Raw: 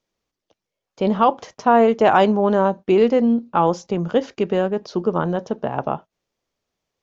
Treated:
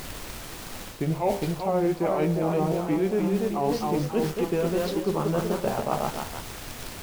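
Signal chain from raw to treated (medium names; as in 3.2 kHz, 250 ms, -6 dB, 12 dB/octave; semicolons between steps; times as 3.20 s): pitch bend over the whole clip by -6 st ending unshifted; ever faster or slower copies 466 ms, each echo +1 st, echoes 3, each echo -6 dB; added noise pink -38 dBFS; in parallel at -10 dB: bit crusher 5-bit; on the sum: de-hum 66.07 Hz, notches 35; reverse; compression 6:1, threshold -22 dBFS, peak gain reduction 13 dB; reverse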